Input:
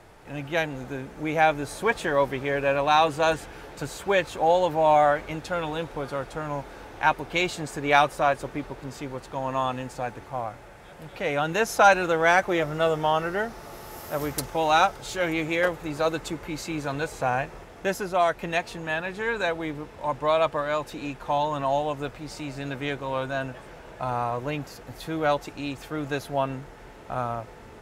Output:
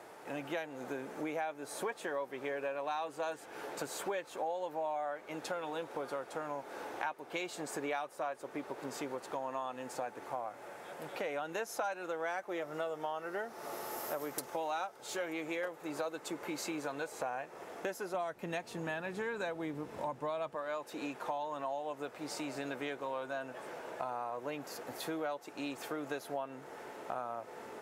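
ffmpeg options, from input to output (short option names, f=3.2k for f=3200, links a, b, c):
-filter_complex "[0:a]asettb=1/sr,asplit=3[a][b][c];[a]atrim=end=18.144[d];[b]atrim=start=18.14:end=20.55,asetpts=PTS-STARTPTS,afade=t=in:d=0.004:c=qsin,afade=t=out:st=2.406:d=0.004:c=qsin,bass=f=250:g=14,treble=f=4k:g=2[e];[c]atrim=start=20.546[f];[d][e]acrossfade=d=0.004:c1=hsin:c2=qsin[g];[g][f]acrossfade=d=0.004:c1=qsin:c2=hsin,highpass=330,equalizer=f=3.3k:w=0.56:g=-5,acompressor=threshold=-38dB:ratio=6,volume=2dB"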